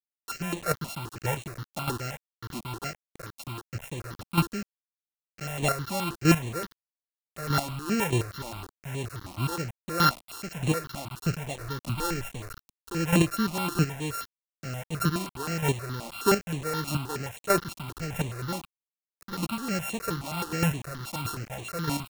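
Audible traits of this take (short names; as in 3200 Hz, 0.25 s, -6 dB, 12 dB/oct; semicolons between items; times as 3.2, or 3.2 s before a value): a buzz of ramps at a fixed pitch in blocks of 32 samples; chopped level 1.6 Hz, depth 65%, duty 15%; a quantiser's noise floor 8-bit, dither none; notches that jump at a steady rate 9.5 Hz 430–5000 Hz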